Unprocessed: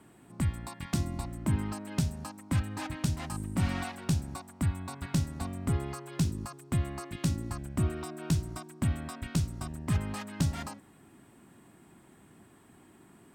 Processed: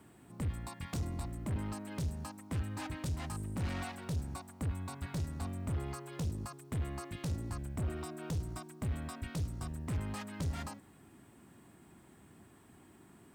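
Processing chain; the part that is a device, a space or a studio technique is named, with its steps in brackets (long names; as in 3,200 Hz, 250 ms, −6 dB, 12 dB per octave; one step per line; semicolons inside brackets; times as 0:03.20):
open-reel tape (soft clipping −31.5 dBFS, distortion −7 dB; parametric band 73 Hz +5 dB 1.09 octaves; white noise bed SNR 41 dB)
level −2.5 dB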